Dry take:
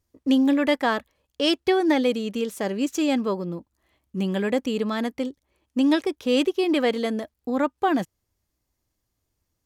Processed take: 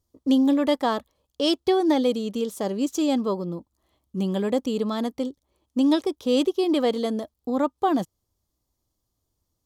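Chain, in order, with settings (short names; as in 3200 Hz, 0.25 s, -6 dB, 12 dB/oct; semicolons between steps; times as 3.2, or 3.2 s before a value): band shelf 2000 Hz -9 dB 1.1 oct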